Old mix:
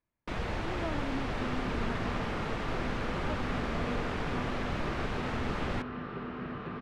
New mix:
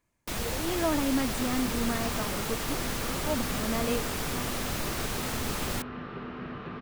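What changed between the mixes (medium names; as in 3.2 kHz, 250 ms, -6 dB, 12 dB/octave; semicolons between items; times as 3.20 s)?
speech +10.5 dB; second sound: add low-pass 3 kHz 12 dB/octave; master: remove low-pass 2.4 kHz 12 dB/octave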